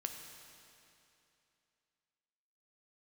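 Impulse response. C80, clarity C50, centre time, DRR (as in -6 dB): 6.0 dB, 5.0 dB, 60 ms, 4.0 dB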